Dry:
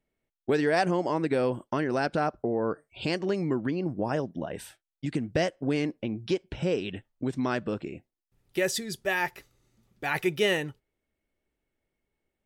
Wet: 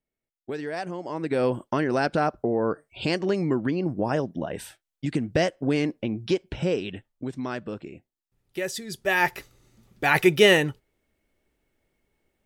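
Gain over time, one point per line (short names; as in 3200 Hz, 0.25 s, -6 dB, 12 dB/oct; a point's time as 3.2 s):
1 s -7.5 dB
1.45 s +3.5 dB
6.55 s +3.5 dB
7.37 s -3 dB
8.77 s -3 dB
9.31 s +8.5 dB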